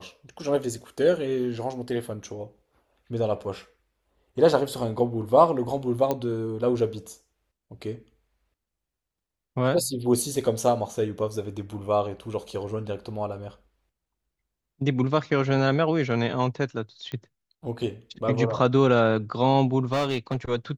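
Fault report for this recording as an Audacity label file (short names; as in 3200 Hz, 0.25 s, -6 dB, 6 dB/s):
6.110000	6.110000	pop -12 dBFS
17.120000	17.120000	pop -22 dBFS
19.920000	20.360000	clipped -20.5 dBFS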